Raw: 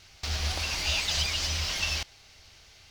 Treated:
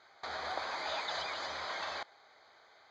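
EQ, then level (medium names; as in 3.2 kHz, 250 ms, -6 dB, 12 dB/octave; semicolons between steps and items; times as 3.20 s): boxcar filter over 16 samples; high-pass 650 Hz 12 dB/octave; distance through air 90 m; +6.5 dB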